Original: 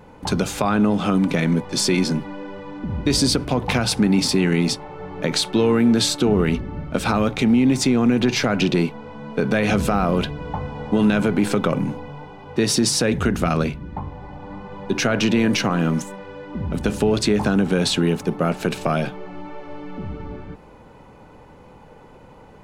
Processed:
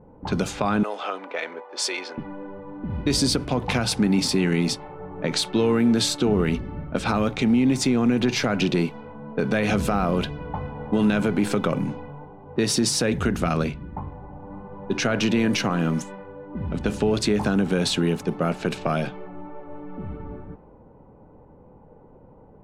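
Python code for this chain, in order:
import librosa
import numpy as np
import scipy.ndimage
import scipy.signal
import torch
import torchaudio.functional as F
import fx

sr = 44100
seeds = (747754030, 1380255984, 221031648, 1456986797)

y = fx.highpass(x, sr, hz=480.0, slope=24, at=(0.83, 2.18))
y = fx.env_lowpass(y, sr, base_hz=610.0, full_db=-17.0)
y = y * 10.0 ** (-3.0 / 20.0)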